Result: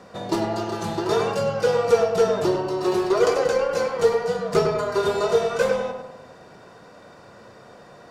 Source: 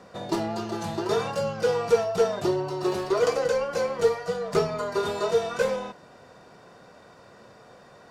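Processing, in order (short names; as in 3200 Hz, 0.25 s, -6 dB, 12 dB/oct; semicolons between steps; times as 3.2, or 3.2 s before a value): darkening echo 99 ms, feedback 52%, low-pass 2100 Hz, level -5 dB; gain +3 dB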